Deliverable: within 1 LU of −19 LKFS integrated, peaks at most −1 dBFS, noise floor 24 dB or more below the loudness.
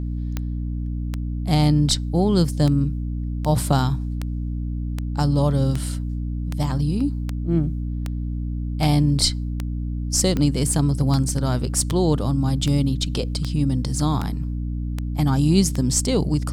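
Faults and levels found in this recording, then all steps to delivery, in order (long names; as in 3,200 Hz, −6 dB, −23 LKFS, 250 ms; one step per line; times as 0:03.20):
number of clicks 22; mains hum 60 Hz; hum harmonics up to 300 Hz; level of the hum −24 dBFS; integrated loudness −22.5 LKFS; sample peak −5.0 dBFS; target loudness −19.0 LKFS
→ click removal
hum removal 60 Hz, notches 5
level +3.5 dB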